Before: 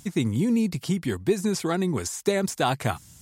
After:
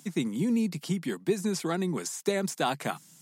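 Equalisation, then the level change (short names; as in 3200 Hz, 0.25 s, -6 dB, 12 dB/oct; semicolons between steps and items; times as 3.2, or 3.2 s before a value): Chebyshev high-pass 150 Hz, order 5; -3.5 dB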